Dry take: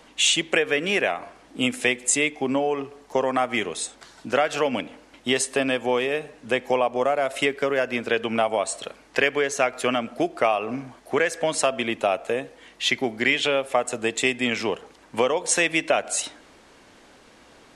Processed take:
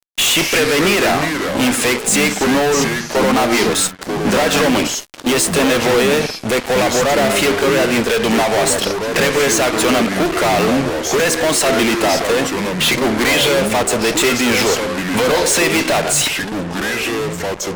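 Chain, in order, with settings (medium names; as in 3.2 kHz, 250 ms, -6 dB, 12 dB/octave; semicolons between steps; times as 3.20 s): fuzz box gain 39 dB, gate -41 dBFS; ever faster or slower copies 122 ms, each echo -4 st, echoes 2, each echo -6 dB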